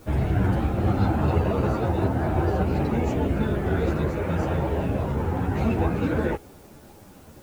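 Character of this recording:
a quantiser's noise floor 10 bits, dither triangular
a shimmering, thickened sound

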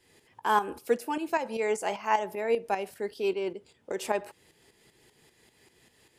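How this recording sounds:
tremolo saw up 5.1 Hz, depth 65%

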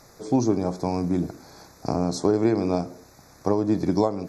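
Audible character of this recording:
background noise floor −53 dBFS
spectral slope −7.5 dB per octave

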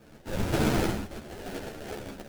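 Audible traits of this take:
tremolo triangle 1.6 Hz, depth 60%
aliases and images of a low sample rate 1,100 Hz, jitter 20%
a shimmering, thickened sound

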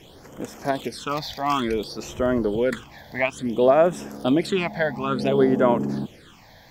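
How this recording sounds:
phaser sweep stages 8, 0.57 Hz, lowest notch 370–4,200 Hz

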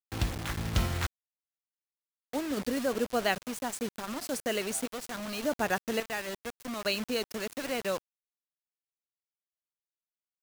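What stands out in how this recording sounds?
sample-and-hold tremolo, depth 70%
a quantiser's noise floor 6 bits, dither none

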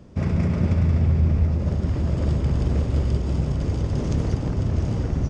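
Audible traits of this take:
background noise floor −27 dBFS
spectral slope −10.0 dB per octave

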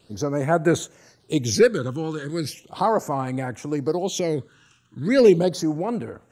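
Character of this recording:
phaser sweep stages 8, 0.37 Hz, lowest notch 610–4,900 Hz

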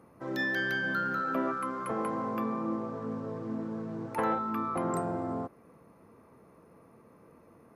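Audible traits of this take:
background noise floor −59 dBFS
spectral slope −4.5 dB per octave

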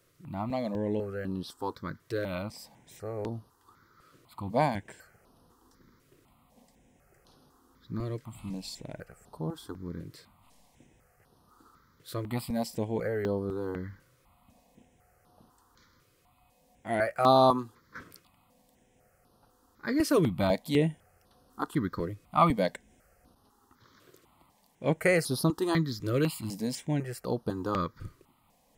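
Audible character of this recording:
notches that jump at a steady rate 4 Hz 220–7,400 Hz

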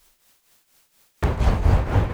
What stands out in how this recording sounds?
a quantiser's noise floor 10 bits, dither triangular
tremolo triangle 4.2 Hz, depth 75%

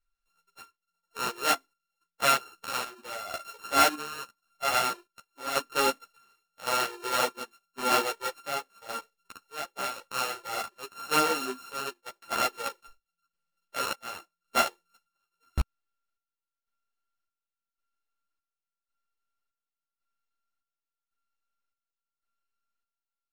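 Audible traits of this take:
a buzz of ramps at a fixed pitch in blocks of 32 samples
chopped level 0.9 Hz, depth 65%, duty 55%
a shimmering, thickened sound

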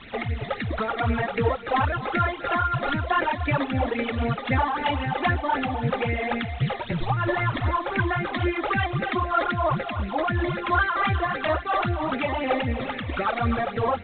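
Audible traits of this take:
a quantiser's noise floor 6 bits, dither triangular
phaser sweep stages 12, 3.8 Hz, lowest notch 140–1,100 Hz
tremolo triangle 2.9 Hz, depth 45%
G.726

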